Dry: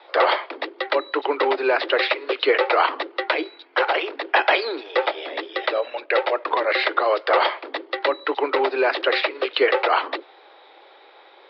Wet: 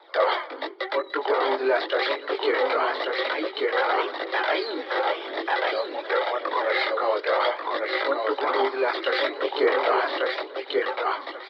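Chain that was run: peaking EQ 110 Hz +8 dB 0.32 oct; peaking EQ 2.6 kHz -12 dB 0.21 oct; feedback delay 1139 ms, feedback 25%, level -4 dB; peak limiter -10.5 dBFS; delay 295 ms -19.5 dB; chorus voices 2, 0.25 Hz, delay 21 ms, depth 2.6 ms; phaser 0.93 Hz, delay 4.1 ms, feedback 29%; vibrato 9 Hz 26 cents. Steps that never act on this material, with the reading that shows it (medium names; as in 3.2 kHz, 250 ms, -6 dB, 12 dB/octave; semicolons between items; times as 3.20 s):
peaking EQ 110 Hz: input has nothing below 250 Hz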